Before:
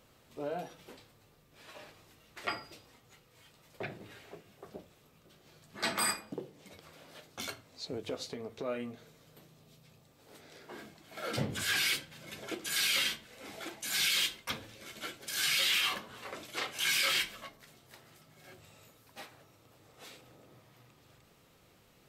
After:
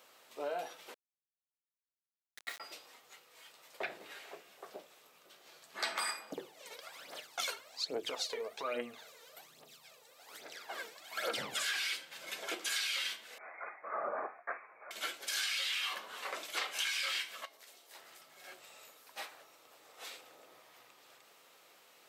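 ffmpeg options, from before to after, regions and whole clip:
-filter_complex "[0:a]asettb=1/sr,asplit=3[a][b][c];[a]atrim=end=0.944[d];[b]atrim=start=0.94:end=2.6,asetpts=PTS-STARTPTS,afade=t=in:d=0.004:c=qsin,afade=t=out:st=1.656:d=0.004:c=qsin,bandpass=f=1.9k:t=q:w=5.8,acrusher=bits=5:dc=4:mix=0:aa=0.000001[e];[c]atrim=start=2.596[f];[d][e]acrossfade=d=0.004:c1=hsin:c2=qsin[g];[g][f]acrossfade=d=0.004:c1=qsin:c2=hsin,asettb=1/sr,asplit=3[h][i][j];[h]atrim=end=6.304[k];[i]atrim=start=6.3:end=11.63,asetpts=PTS-STARTPTS,afade=t=in:d=0.004:c=qsin,afade=t=out:st=5.326:d=0.004:c=qsin,bandreject=f=50:t=h:w=6,bandreject=f=100:t=h:w=6,bandreject=f=150:t=h:w=6,bandreject=f=200:t=h:w=6,bandreject=f=250:t=h:w=6,bandreject=f=300:t=h:w=6,bandreject=f=350:t=h:w=6,bandreject=f=400:t=h:w=6,aphaser=in_gain=1:out_gain=1:delay=2.3:decay=0.68:speed=1.2:type=triangular[l];[j]atrim=start=11.626[m];[k][l]acrossfade=d=0.004:c1=hsin:c2=qsin[n];[n][m]acrossfade=d=0.004:c1=qsin:c2=hsin,asettb=1/sr,asplit=3[o][p][q];[o]atrim=end=13.384[r];[p]atrim=start=13.38:end=14.91,asetpts=PTS-STARTPTS,afade=t=in:d=0.004:c=qsin,afade=t=out:st=1.526:d=0.004:c=qsin,highpass=1k,lowpass=f=2.4k:t=q:w=0.5098,lowpass=f=2.4k:t=q:w=0.6013,lowpass=f=2.4k:t=q:w=0.9,lowpass=f=2.4k:t=q:w=2.563,afreqshift=-2800[s];[q]atrim=start=14.906[t];[r][s]acrossfade=d=0.004:c1=hsin:c2=qsin[u];[u][t]acrossfade=d=0.004:c1=qsin:c2=hsin,asettb=1/sr,asplit=3[v][w][x];[v]atrim=end=17.454[y];[w]atrim=start=17.45:end=17.95,asetpts=PTS-STARTPTS,afade=t=in:d=0.004:c=qsin,afade=t=out:st=0.496:d=0.004:c=qsin,highpass=300,acompressor=threshold=-53dB:ratio=5:attack=3.2:release=140:knee=1:detection=peak,equalizer=f=1.4k:w=0.8:g=-5.5[z];[x]atrim=start=17.946[aa];[y][z]acrossfade=d=0.004:c1=hsin:c2=qsin[ab];[ab][aa]acrossfade=d=0.004:c1=qsin:c2=hsin,acrossover=split=8000[ac][ad];[ad]acompressor=threshold=-47dB:ratio=4:attack=1:release=60[ae];[ac][ae]amix=inputs=2:normalize=0,highpass=590,acompressor=threshold=-37dB:ratio=12,volume=4.5dB"

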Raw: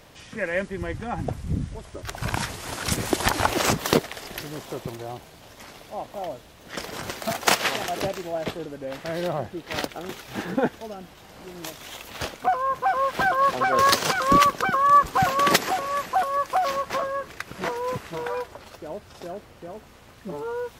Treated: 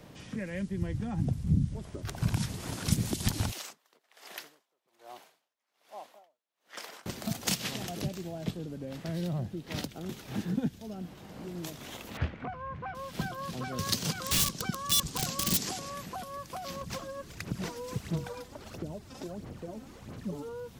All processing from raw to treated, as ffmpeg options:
-filter_complex "[0:a]asettb=1/sr,asplit=3[a][b][c];[a]atrim=end=3.514[d];[b]atrim=start=3.51:end=7.06,asetpts=PTS-STARTPTS,afade=t=in:d=0.004:c=qsin,afade=t=out:st=3.546:d=0.004:c=qsin,highpass=830,aeval=exprs='val(0)*pow(10,-38*(0.5-0.5*cos(2*PI*1.2*n/s))/20)':c=same[e];[c]atrim=start=7.056[f];[d][e]acrossfade=d=0.004:c1=hsin:c2=qsin[g];[g][f]acrossfade=d=0.004:c1=qsin:c2=hsin,asettb=1/sr,asplit=3[h][i][j];[h]atrim=end=12.174[k];[i]atrim=start=12.17:end=12.95,asetpts=PTS-STARTPTS,afade=t=in:d=0.004:c=qsin,afade=t=out:st=0.776:d=0.004:c=qsin,equalizer=f=81:t=o:w=0.84:g=10,acompressor=mode=upward:threshold=-36dB:ratio=2.5:attack=3.2:release=140:knee=2.83:detection=peak,lowpass=f=2k:t=q:w=2[l];[j]atrim=start=12.946[m];[k][l]acrossfade=d=0.004:c1=hsin:c2=qsin[n];[n][m]acrossfade=d=0.004:c1=qsin:c2=hsin,asettb=1/sr,asplit=3[o][p][q];[o]atrim=end=14.244[r];[p]atrim=start=14.24:end=15.9,asetpts=PTS-STARTPTS,afade=t=in:d=0.004:c=qsin,afade=t=out:st=1.656:d=0.004:c=qsin,lowpass=7.6k,bass=f=250:g=-1,treble=f=4k:g=11,aeval=exprs='(mod(4.22*val(0)+1,2)-1)/4.22':c=same[s];[q]atrim=start=15.896[t];[r][s]acrossfade=d=0.004:c1=hsin:c2=qsin[u];[u][t]acrossfade=d=0.004:c1=qsin:c2=hsin,asettb=1/sr,asplit=3[v][w][x];[v]atrim=end=16.814[y];[w]atrim=start=16.81:end=20.49,asetpts=PTS-STARTPTS,afade=t=in:d=0.004:c=qsin,afade=t=out:st=3.676:d=0.004:c=qsin,equalizer=f=6.9k:t=o:w=1.1:g=3.5,aphaser=in_gain=1:out_gain=1:delay=3.9:decay=0.56:speed=1.5:type=sinusoidal[z];[x]atrim=start=20.486[aa];[y][z]acrossfade=d=0.004:c1=hsin:c2=qsin[ab];[ab][aa]acrossfade=d=0.004:c1=qsin:c2=hsin,equalizer=f=190:t=o:w=2.3:g=12,acrossover=split=190|3000[ac][ad][ae];[ad]acompressor=threshold=-34dB:ratio=6[af];[ac][af][ae]amix=inputs=3:normalize=0,volume=-6dB"

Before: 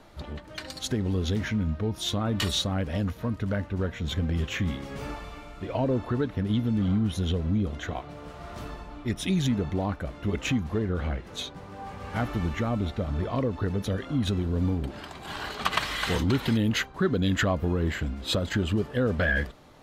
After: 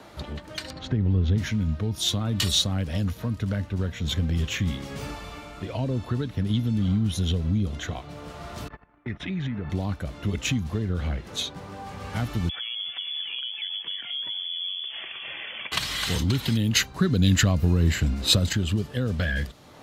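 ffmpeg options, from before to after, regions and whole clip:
-filter_complex "[0:a]asettb=1/sr,asplit=3[a][b][c];[a]atrim=end=0.704[d];[b]atrim=start=0.7:end=1.38,asetpts=PTS-STARTPTS,afade=t=in:d=0.004:c=qsin,afade=t=out:st=0.676:d=0.004:c=qsin,lowpass=2k,lowshelf=f=160:g=5.5[e];[c]atrim=start=1.376[f];[d][e]acrossfade=d=0.004:c1=hsin:c2=qsin[g];[g][f]acrossfade=d=0.004:c1=qsin:c2=hsin,asettb=1/sr,asplit=3[h][i][j];[h]atrim=end=8.684[k];[i]atrim=start=8.68:end=9.7,asetpts=PTS-STARTPTS,afade=t=in:d=0.004:c=qsin,afade=t=out:st=1.016:d=0.004:c=qsin,agate=range=-27dB:threshold=-37dB:ratio=16:release=100:detection=peak,lowpass=f=1.9k:t=q:w=2.3,acompressor=threshold=-33dB:ratio=2:attack=3.2:release=140:knee=1:detection=peak[l];[j]atrim=start=9.696[m];[k][l]acrossfade=d=0.004:c1=hsin:c2=qsin[n];[n][m]acrossfade=d=0.004:c1=qsin:c2=hsin,asettb=1/sr,asplit=3[o][p][q];[o]atrim=end=12.494[r];[p]atrim=start=12.49:end=15.72,asetpts=PTS-STARTPTS,afade=t=in:d=0.004:c=qsin,afade=t=out:st=3.226:d=0.004:c=qsin,acompressor=threshold=-36dB:ratio=4:attack=3.2:release=140:knee=1:detection=peak,lowpass=f=3k:t=q:w=0.5098,lowpass=f=3k:t=q:w=0.6013,lowpass=f=3k:t=q:w=0.9,lowpass=f=3k:t=q:w=2.563,afreqshift=-3500[s];[q]atrim=start=15.716[t];[r][s]acrossfade=d=0.004:c1=hsin:c2=qsin[u];[u][t]acrossfade=d=0.004:c1=qsin:c2=hsin,asettb=1/sr,asplit=3[v][w][x];[v]atrim=end=16.754[y];[w]atrim=start=16.75:end=18.53,asetpts=PTS-STARTPTS,afade=t=in:d=0.004:c=qsin,afade=t=out:st=1.776:d=0.004:c=qsin,bandreject=f=3.3k:w=9.1,acontrast=30[z];[x]atrim=start=18.526[aa];[y][z]acrossfade=d=0.004:c1=hsin:c2=qsin[ab];[ab][aa]acrossfade=d=0.004:c1=qsin:c2=hsin,highpass=53,lowshelf=f=140:g=-4.5,acrossover=split=180|3000[ac][ad][ae];[ad]acompressor=threshold=-49dB:ratio=2[af];[ac][af][ae]amix=inputs=3:normalize=0,volume=7dB"

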